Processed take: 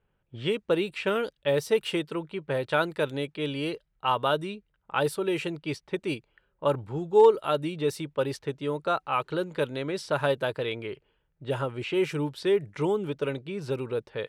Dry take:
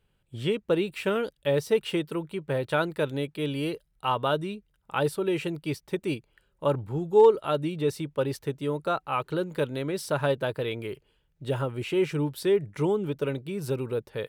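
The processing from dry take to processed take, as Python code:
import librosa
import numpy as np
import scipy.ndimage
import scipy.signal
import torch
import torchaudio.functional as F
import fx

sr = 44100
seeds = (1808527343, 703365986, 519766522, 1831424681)

y = fx.env_lowpass(x, sr, base_hz=1700.0, full_db=-22.5)
y = fx.low_shelf(y, sr, hz=360.0, db=-6.0)
y = y * 10.0 ** (2.0 / 20.0)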